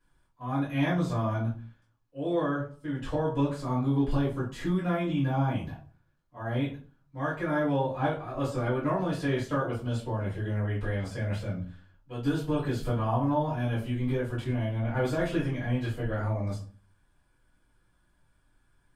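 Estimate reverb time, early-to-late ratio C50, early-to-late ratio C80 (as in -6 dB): 0.40 s, 7.0 dB, 13.0 dB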